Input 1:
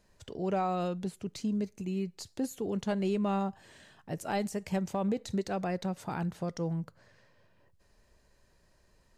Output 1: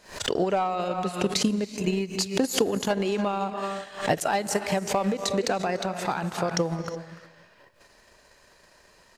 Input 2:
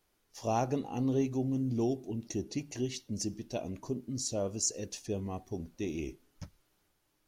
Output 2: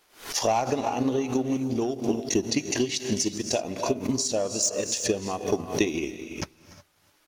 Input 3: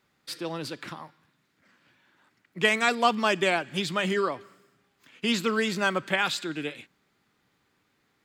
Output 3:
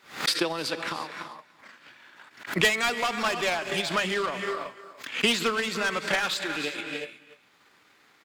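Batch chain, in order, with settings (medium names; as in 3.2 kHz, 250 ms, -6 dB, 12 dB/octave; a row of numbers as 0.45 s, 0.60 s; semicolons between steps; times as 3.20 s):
delay 292 ms -16.5 dB; overdrive pedal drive 18 dB, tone 7.1 kHz, clips at -8 dBFS; overload inside the chain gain 15.5 dB; gated-style reverb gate 390 ms rising, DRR 10 dB; compression 2.5:1, threshold -27 dBFS; peak limiter -22 dBFS; transient shaper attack +10 dB, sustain -5 dB; swell ahead of each attack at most 140 dB/s; normalise loudness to -27 LUFS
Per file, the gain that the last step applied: +2.5 dB, +2.5 dB, 0.0 dB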